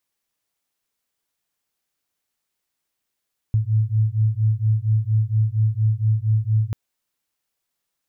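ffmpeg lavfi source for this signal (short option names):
-f lavfi -i "aevalsrc='0.106*(sin(2*PI*107*t)+sin(2*PI*111.3*t))':d=3.19:s=44100"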